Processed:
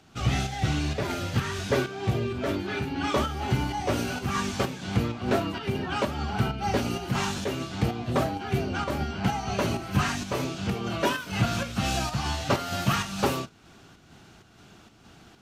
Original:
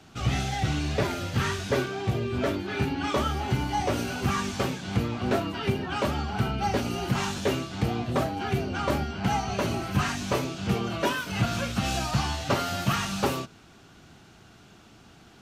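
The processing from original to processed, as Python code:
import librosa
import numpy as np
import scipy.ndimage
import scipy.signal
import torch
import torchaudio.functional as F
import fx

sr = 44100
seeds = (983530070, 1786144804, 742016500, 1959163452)

y = fx.volume_shaper(x, sr, bpm=129, per_beat=1, depth_db=-6, release_ms=163.0, shape='slow start')
y = F.gain(torch.from_numpy(y), 1.0).numpy()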